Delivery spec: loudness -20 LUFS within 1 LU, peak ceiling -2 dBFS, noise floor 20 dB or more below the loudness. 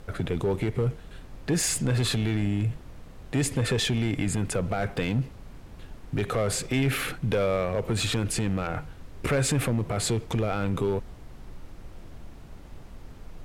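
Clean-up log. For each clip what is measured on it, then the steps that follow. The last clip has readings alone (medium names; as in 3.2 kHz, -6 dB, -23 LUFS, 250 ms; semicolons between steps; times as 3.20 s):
clipped samples 1.5%; clipping level -19.0 dBFS; noise floor -46 dBFS; noise floor target -48 dBFS; loudness -27.5 LUFS; peak level -19.0 dBFS; loudness target -20.0 LUFS
-> clip repair -19 dBFS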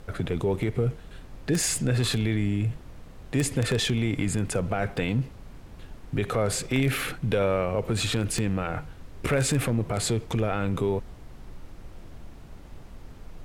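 clipped samples 0.0%; noise floor -46 dBFS; noise floor target -47 dBFS
-> noise print and reduce 6 dB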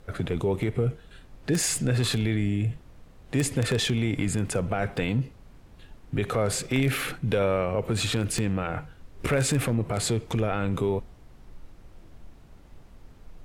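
noise floor -51 dBFS; loudness -27.0 LUFS; peak level -10.0 dBFS; loudness target -20.0 LUFS
-> trim +7 dB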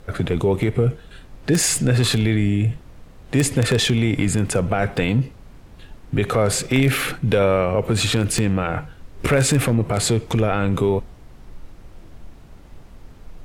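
loudness -20.0 LUFS; peak level -3.0 dBFS; noise floor -44 dBFS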